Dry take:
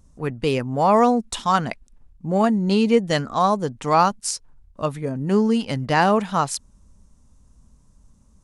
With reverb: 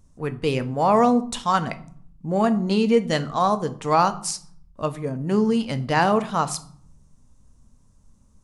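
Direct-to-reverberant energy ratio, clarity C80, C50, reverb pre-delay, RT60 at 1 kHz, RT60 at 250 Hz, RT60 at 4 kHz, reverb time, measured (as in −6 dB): 10.5 dB, 20.5 dB, 16.5 dB, 6 ms, 0.55 s, 0.95 s, 0.35 s, 0.55 s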